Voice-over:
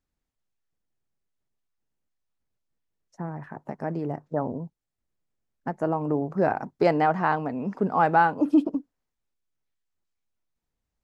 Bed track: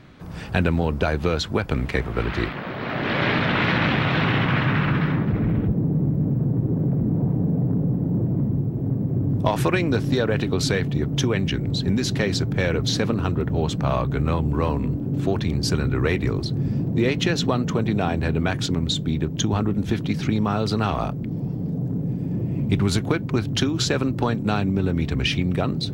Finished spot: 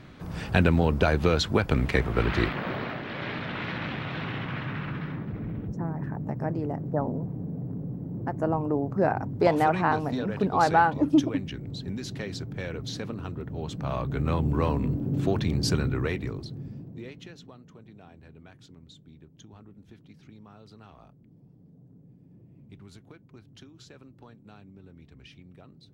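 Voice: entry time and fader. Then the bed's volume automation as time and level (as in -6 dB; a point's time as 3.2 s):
2.60 s, -1.0 dB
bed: 2.75 s -0.5 dB
3.06 s -12.5 dB
13.53 s -12.5 dB
14.42 s -3 dB
15.76 s -3 dB
17.58 s -28 dB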